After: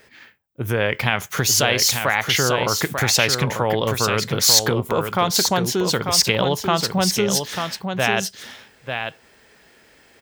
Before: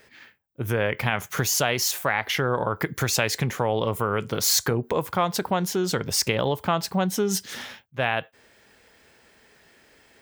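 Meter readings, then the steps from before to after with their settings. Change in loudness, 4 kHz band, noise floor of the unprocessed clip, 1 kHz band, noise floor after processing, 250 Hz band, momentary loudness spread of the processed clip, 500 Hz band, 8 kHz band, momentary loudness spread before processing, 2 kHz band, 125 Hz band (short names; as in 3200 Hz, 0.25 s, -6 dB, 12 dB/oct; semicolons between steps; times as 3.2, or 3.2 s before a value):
+5.5 dB, +9.0 dB, -58 dBFS, +4.0 dB, -54 dBFS, +4.0 dB, 11 LU, +4.0 dB, +7.0 dB, 6 LU, +6.0 dB, +4.0 dB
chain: dynamic EQ 4100 Hz, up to +6 dB, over -38 dBFS, Q 0.85; on a send: echo 0.893 s -6.5 dB; on the sum: gain +3 dB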